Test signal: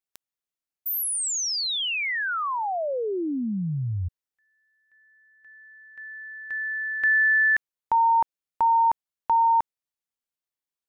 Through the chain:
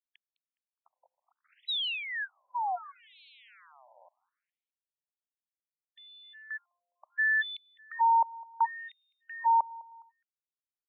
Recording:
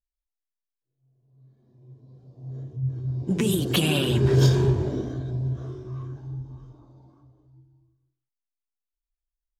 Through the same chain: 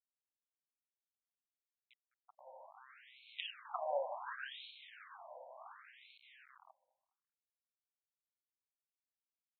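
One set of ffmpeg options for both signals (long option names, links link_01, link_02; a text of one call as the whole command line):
ffmpeg -i in.wav -af "aeval=exprs='if(lt(val(0),0),0.447*val(0),val(0))':channel_layout=same,equalizer=frequency=2200:width=3.2:gain=-9.5,bandreject=frequency=59.41:width_type=h:width=4,bandreject=frequency=118.82:width_type=h:width=4,aresample=11025,aresample=44100,aeval=exprs='val(0)*gte(abs(val(0)),0.00841)':channel_layout=same,aecho=1:1:207|414|621:0.075|0.0307|0.0126,afftfilt=real='re*between(b*sr/1024,700*pow(3100/700,0.5+0.5*sin(2*PI*0.69*pts/sr))/1.41,700*pow(3100/700,0.5+0.5*sin(2*PI*0.69*pts/sr))*1.41)':imag='im*between(b*sr/1024,700*pow(3100/700,0.5+0.5*sin(2*PI*0.69*pts/sr))/1.41,700*pow(3100/700,0.5+0.5*sin(2*PI*0.69*pts/sr))*1.41)':win_size=1024:overlap=0.75" out.wav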